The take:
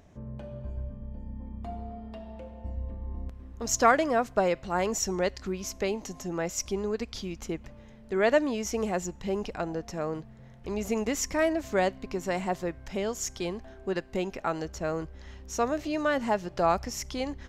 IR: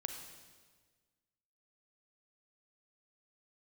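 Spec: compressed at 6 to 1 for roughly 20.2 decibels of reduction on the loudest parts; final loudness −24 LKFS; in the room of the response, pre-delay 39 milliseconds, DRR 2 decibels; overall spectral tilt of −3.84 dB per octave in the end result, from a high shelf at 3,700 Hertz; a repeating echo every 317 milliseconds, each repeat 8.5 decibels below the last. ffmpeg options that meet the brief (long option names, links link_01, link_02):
-filter_complex "[0:a]highshelf=frequency=3700:gain=5,acompressor=threshold=-39dB:ratio=6,aecho=1:1:317|634|951|1268:0.376|0.143|0.0543|0.0206,asplit=2[link_01][link_02];[1:a]atrim=start_sample=2205,adelay=39[link_03];[link_02][link_03]afir=irnorm=-1:irlink=0,volume=-1dB[link_04];[link_01][link_04]amix=inputs=2:normalize=0,volume=16.5dB"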